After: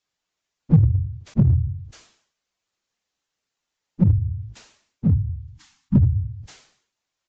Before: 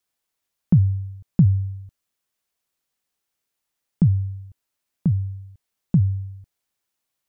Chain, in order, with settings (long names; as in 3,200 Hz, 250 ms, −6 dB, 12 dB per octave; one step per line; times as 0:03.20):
random phases in long frames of 50 ms
downsampling to 16,000 Hz
treble cut that deepens with the level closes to 670 Hz, closed at −18 dBFS
in parallel at −3.5 dB: hard clipping −16.5 dBFS, distortion −8 dB
0:05.10–0:05.96: on the sum: Chebyshev band-stop filter 310–770 Hz, order 5
level that may fall only so fast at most 93 dB per second
level −2 dB